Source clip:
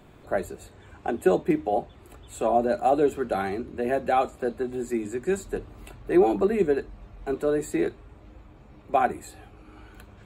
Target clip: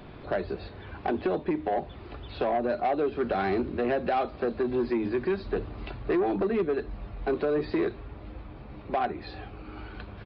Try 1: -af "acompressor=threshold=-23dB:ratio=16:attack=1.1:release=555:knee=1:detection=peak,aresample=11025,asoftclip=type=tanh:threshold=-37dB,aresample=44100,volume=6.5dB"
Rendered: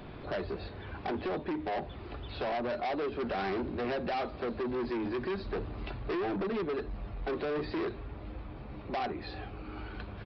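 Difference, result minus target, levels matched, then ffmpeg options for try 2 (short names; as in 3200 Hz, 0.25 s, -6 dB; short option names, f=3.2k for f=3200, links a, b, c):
soft clip: distortion +9 dB
-af "acompressor=threshold=-23dB:ratio=16:attack=1.1:release=555:knee=1:detection=peak,aresample=11025,asoftclip=type=tanh:threshold=-26.5dB,aresample=44100,volume=6.5dB"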